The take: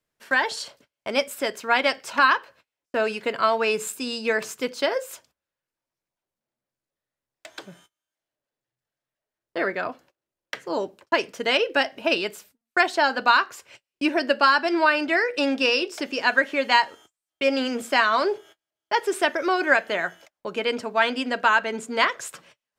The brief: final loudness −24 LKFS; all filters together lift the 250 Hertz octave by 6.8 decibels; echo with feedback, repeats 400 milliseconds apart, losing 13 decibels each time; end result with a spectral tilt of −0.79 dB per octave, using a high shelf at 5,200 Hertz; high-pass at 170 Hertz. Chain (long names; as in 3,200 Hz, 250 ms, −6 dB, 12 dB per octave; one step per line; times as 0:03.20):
high-pass filter 170 Hz
parametric band 250 Hz +9 dB
high-shelf EQ 5,200 Hz −6 dB
repeating echo 400 ms, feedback 22%, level −13 dB
level −2 dB